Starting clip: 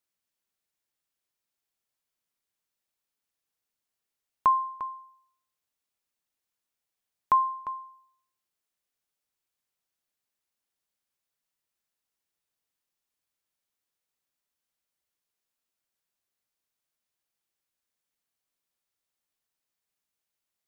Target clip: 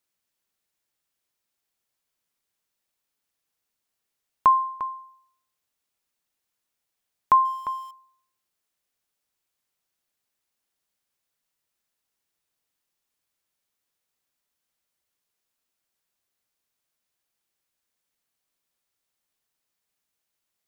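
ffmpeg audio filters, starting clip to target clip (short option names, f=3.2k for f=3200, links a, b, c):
-filter_complex "[0:a]asettb=1/sr,asplit=3[a][b][c];[a]atrim=end=7.454[d];[b]atrim=start=7.45:end=7.91,asetpts=PTS-STARTPTS,afade=t=in:d=0.004:c=qsin,afade=t=out:st=0.456:d=0.004:c=qsin,aeval=exprs='val(0)+0.5*0.00376*sgn(val(0))':c=same[e];[c]atrim=start=7.906[f];[d][e]acrossfade=d=0.004:c1=hsin:c2=qsin[g];[g][f]acrossfade=d=0.004:c1=qsin:c2=hsin,volume=4.5dB"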